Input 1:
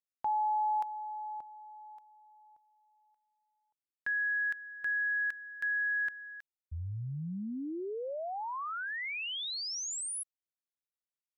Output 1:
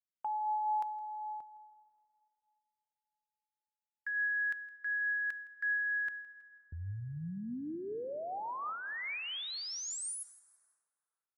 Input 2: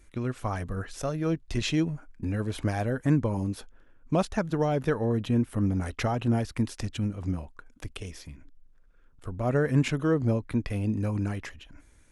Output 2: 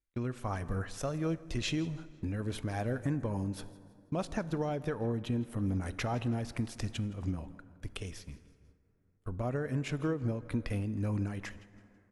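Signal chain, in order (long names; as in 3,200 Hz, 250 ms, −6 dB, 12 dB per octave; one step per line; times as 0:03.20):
noise gate −44 dBFS, range −28 dB
downward compressor, threshold −27 dBFS
repeating echo 164 ms, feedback 38%, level −20.5 dB
dense smooth reverb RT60 3 s, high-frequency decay 0.45×, pre-delay 0 ms, DRR 15.5 dB
amplitude modulation by smooth noise, depth 50%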